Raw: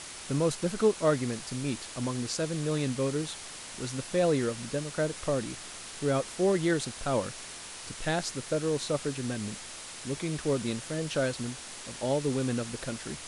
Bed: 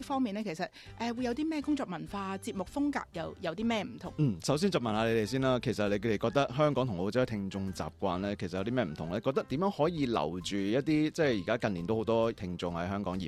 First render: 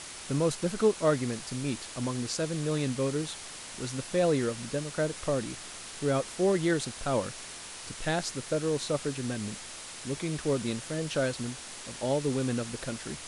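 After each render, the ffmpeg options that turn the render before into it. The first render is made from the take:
-af anull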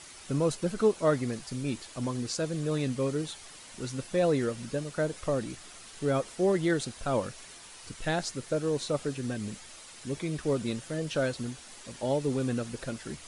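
-af "afftdn=nr=8:nf=-43"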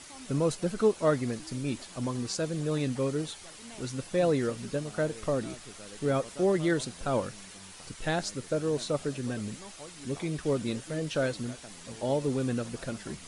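-filter_complex "[1:a]volume=-18.5dB[a];[0:a][a]amix=inputs=2:normalize=0"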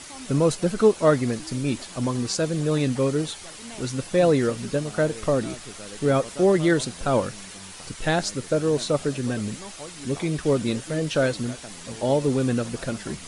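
-af "volume=7dB"

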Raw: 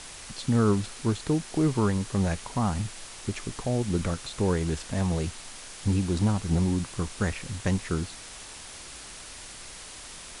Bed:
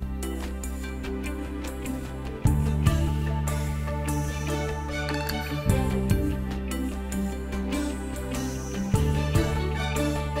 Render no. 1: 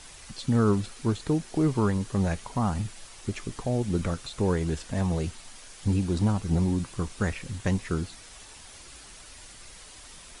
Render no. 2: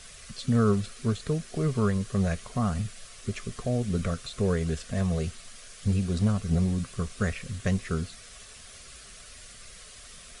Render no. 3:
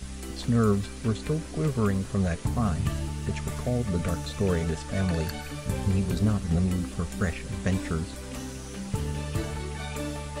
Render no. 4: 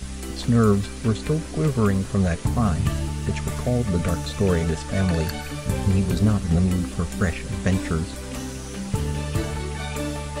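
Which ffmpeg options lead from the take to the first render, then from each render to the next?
-af "afftdn=nr=7:nf=-44"
-af "superequalizer=6b=0.282:9b=0.282"
-filter_complex "[1:a]volume=-7dB[a];[0:a][a]amix=inputs=2:normalize=0"
-af "volume=5dB"

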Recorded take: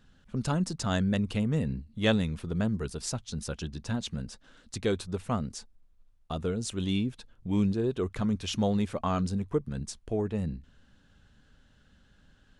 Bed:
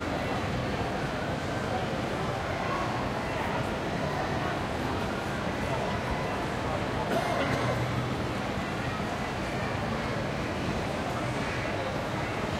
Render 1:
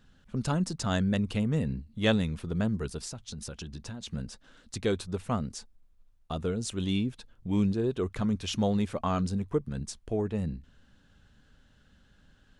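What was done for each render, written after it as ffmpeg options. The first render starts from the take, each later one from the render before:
-filter_complex "[0:a]asplit=3[a][b][c];[a]afade=t=out:st=2.99:d=0.02[d];[b]acompressor=threshold=-35dB:ratio=10:attack=3.2:release=140:knee=1:detection=peak,afade=t=in:st=2.99:d=0.02,afade=t=out:st=4.07:d=0.02[e];[c]afade=t=in:st=4.07:d=0.02[f];[d][e][f]amix=inputs=3:normalize=0"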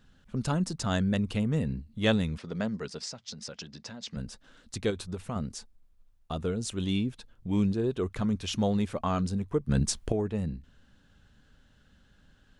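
-filter_complex "[0:a]asettb=1/sr,asplit=3[a][b][c];[a]atrim=end=2.384[d];[b]atrim=start=2.38:end=4.17,asetpts=PTS-STARTPTS,afade=t=in:d=0.004:c=qsin,afade=t=out:st=1.786:d=0.004:c=qsin,highpass=190,equalizer=f=340:t=q:w=4:g=-6,equalizer=f=570:t=q:w=4:g=3,equalizer=f=2k:t=q:w=4:g=5,equalizer=f=5k:t=q:w=4:g=7,lowpass=f=7.4k:w=0.5412,lowpass=f=7.4k:w=1.3066[e];[c]atrim=start=4.166[f];[d][e]acrossfade=d=0.004:c1=hsin:c2=qsin[g];[g][f]acrossfade=d=0.004:c1=qsin:c2=hsin,asettb=1/sr,asplit=3[h][i][j];[h]atrim=end=4.904[k];[i]atrim=start=4.9:end=5.36,asetpts=PTS-STARTPTS,afade=t=in:d=0.004:c=qsin,afade=t=out:st=0.456:d=0.004:c=qsin,acompressor=threshold=-29dB:ratio=6:attack=3.2:release=140:knee=1:detection=peak[l];[j]atrim=start=5.356[m];[k][l]acrossfade=d=0.004:c1=hsin:c2=qsin[n];[n][m]acrossfade=d=0.004:c1=qsin:c2=hsin,asplit=3[o][p][q];[o]atrim=end=9.692[r];[p]atrim=start=9.688:end=10.122,asetpts=PTS-STARTPTS,volume=10dB[s];[q]atrim=start=10.118[t];[r][s]acrossfade=d=0.004:c1=hsin:c2=hsin[u];[u][t]acrossfade=d=0.004:c1=hsin:c2=hsin"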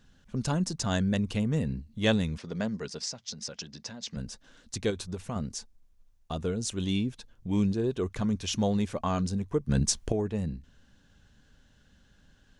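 -af "equalizer=f=6.1k:w=2.1:g=5.5,bandreject=f=1.3k:w=15"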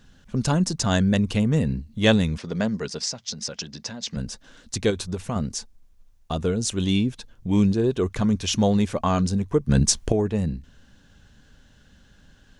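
-af "volume=7dB"

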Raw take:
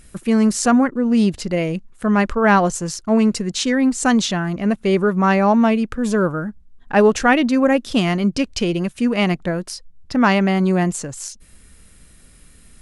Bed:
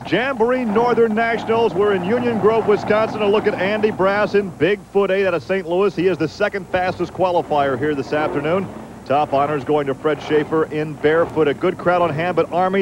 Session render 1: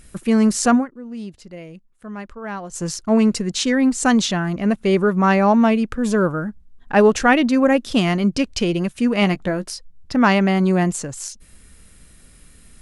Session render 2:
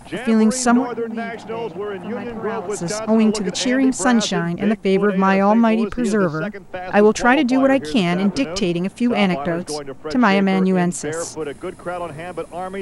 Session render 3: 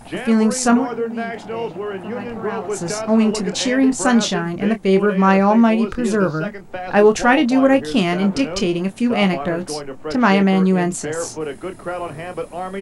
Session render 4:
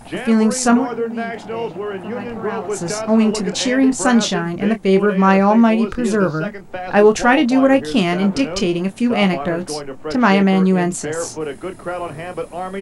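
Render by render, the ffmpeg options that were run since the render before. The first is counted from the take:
-filter_complex "[0:a]asettb=1/sr,asplit=3[a][b][c];[a]atrim=end=9.204[d];[b]atrim=start=9.2:end=9.71,asetpts=PTS-STARTPTS,afade=t=in:d=0.004:c=qsin,afade=t=out:st=0.506:d=0.004:c=qsin,asplit=2[e][f];[f]adelay=15,volume=-11dB[g];[e][g]amix=inputs=2:normalize=0,atrim=end_sample=22491[h];[c]atrim=start=9.706[i];[d][h]acrossfade=d=0.004:c1=hsin:c2=qsin[j];[j][i]acrossfade=d=0.004:c1=qsin:c2=hsin,asplit=3[k][l][m];[k]atrim=end=0.86,asetpts=PTS-STARTPTS,afade=t=out:st=0.74:d=0.12:silence=0.158489[n];[l]atrim=start=0.86:end=2.7,asetpts=PTS-STARTPTS,volume=-16dB[o];[m]atrim=start=2.7,asetpts=PTS-STARTPTS,afade=t=in:d=0.12:silence=0.158489[p];[n][o][p]concat=n=3:v=0:a=1"
-filter_complex "[1:a]volume=-10.5dB[a];[0:a][a]amix=inputs=2:normalize=0"
-filter_complex "[0:a]asplit=2[a][b];[b]adelay=26,volume=-9dB[c];[a][c]amix=inputs=2:normalize=0"
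-af "volume=1dB,alimiter=limit=-2dB:level=0:latency=1"

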